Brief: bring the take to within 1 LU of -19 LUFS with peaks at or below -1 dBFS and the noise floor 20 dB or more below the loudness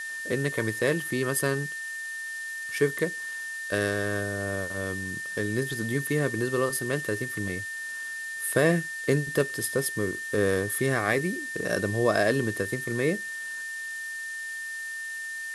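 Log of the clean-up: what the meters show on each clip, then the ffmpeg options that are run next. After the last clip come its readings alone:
steady tone 1800 Hz; tone level -33 dBFS; noise floor -36 dBFS; noise floor target -49 dBFS; loudness -28.5 LUFS; peak -9.0 dBFS; loudness target -19.0 LUFS
-> -af "bandreject=f=1.8k:w=30"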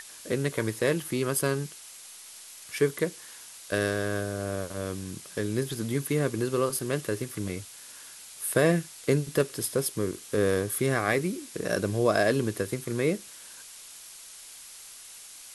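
steady tone none; noise floor -47 dBFS; noise floor target -49 dBFS
-> -af "afftdn=nr=6:nf=-47"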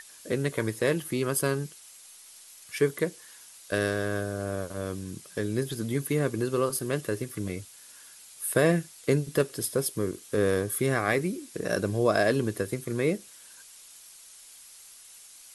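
noise floor -51 dBFS; loudness -28.5 LUFS; peak -9.5 dBFS; loudness target -19.0 LUFS
-> -af "volume=9.5dB,alimiter=limit=-1dB:level=0:latency=1"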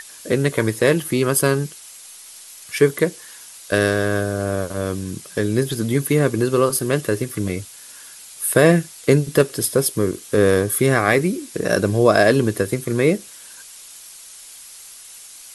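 loudness -19.5 LUFS; peak -1.0 dBFS; noise floor -41 dBFS

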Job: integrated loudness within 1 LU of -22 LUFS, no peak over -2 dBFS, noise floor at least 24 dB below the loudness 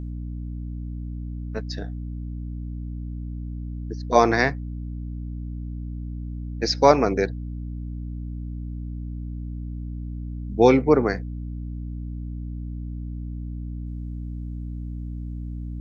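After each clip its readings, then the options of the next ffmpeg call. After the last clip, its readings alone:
hum 60 Hz; harmonics up to 300 Hz; hum level -29 dBFS; loudness -27.0 LUFS; peak -1.5 dBFS; loudness target -22.0 LUFS
-> -af "bandreject=f=60:t=h:w=6,bandreject=f=120:t=h:w=6,bandreject=f=180:t=h:w=6,bandreject=f=240:t=h:w=6,bandreject=f=300:t=h:w=6"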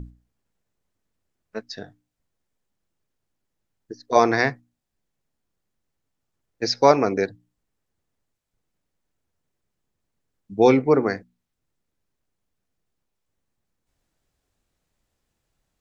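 hum none; loudness -20.0 LUFS; peak -2.0 dBFS; loudness target -22.0 LUFS
-> -af "volume=-2dB"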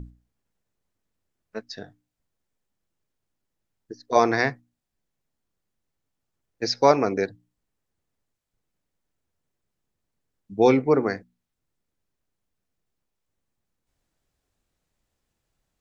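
loudness -22.0 LUFS; peak -4.0 dBFS; noise floor -81 dBFS

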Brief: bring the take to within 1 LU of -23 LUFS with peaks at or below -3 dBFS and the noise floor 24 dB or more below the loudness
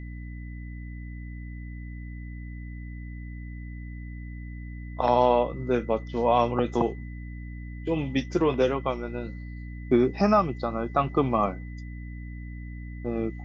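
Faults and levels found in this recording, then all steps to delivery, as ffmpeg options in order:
hum 60 Hz; harmonics up to 300 Hz; hum level -35 dBFS; steady tone 2000 Hz; tone level -50 dBFS; loudness -25.5 LUFS; peak -8.5 dBFS; loudness target -23.0 LUFS
-> -af "bandreject=f=60:t=h:w=6,bandreject=f=120:t=h:w=6,bandreject=f=180:t=h:w=6,bandreject=f=240:t=h:w=6,bandreject=f=300:t=h:w=6"
-af "bandreject=f=2k:w=30"
-af "volume=2.5dB"

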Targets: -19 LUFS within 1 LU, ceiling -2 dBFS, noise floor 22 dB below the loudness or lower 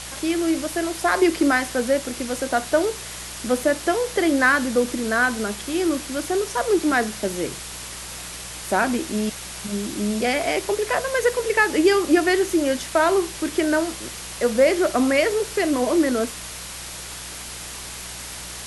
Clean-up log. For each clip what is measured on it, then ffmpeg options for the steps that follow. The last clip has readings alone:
hum 60 Hz; harmonics up to 180 Hz; hum level -42 dBFS; noise floor -35 dBFS; noise floor target -44 dBFS; loudness -22.0 LUFS; peak -5.0 dBFS; loudness target -19.0 LUFS
-> -af "bandreject=f=60:t=h:w=4,bandreject=f=120:t=h:w=4,bandreject=f=180:t=h:w=4"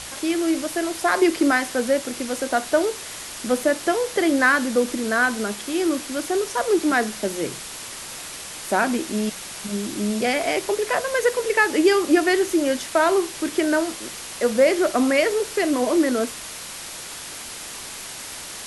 hum none; noise floor -36 dBFS; noise floor target -44 dBFS
-> -af "afftdn=nr=8:nf=-36"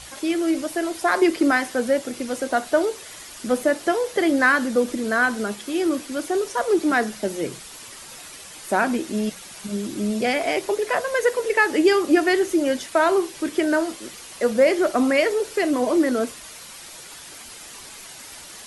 noise floor -41 dBFS; noise floor target -44 dBFS
-> -af "afftdn=nr=6:nf=-41"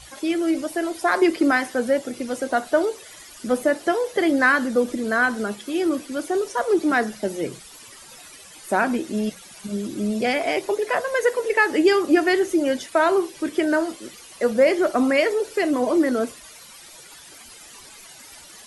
noise floor -45 dBFS; loudness -22.0 LUFS; peak -5.5 dBFS; loudness target -19.0 LUFS
-> -af "volume=3dB"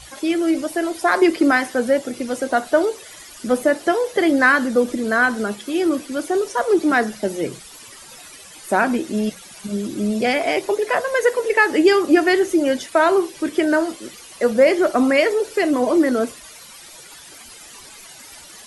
loudness -19.0 LUFS; peak -2.5 dBFS; noise floor -42 dBFS

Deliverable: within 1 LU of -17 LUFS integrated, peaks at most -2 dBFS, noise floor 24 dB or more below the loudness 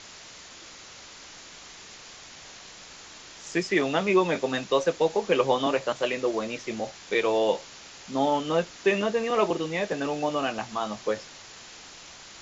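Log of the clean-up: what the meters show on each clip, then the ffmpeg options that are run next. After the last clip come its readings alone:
noise floor -47 dBFS; noise floor target -51 dBFS; loudness -26.5 LUFS; peak -9.0 dBFS; loudness target -17.0 LUFS
-> -af "afftdn=nr=6:nf=-47"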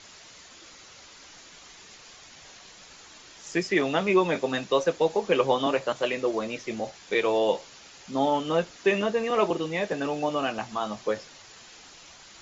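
noise floor -50 dBFS; noise floor target -51 dBFS
-> -af "afftdn=nr=6:nf=-50"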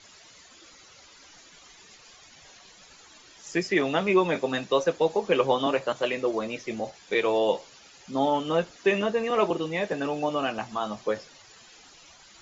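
noise floor -53 dBFS; loudness -26.5 LUFS; peak -9.0 dBFS; loudness target -17.0 LUFS
-> -af "volume=9.5dB,alimiter=limit=-2dB:level=0:latency=1"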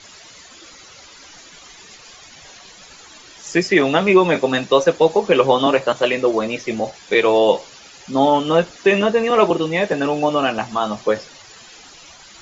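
loudness -17.5 LUFS; peak -2.0 dBFS; noise floor -43 dBFS

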